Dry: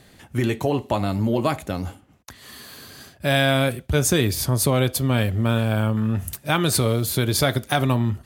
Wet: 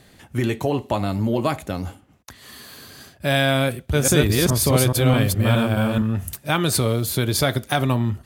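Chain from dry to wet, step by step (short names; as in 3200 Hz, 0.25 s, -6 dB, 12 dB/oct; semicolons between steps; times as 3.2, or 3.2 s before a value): 3.66–6.02 reverse delay 0.211 s, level -0.5 dB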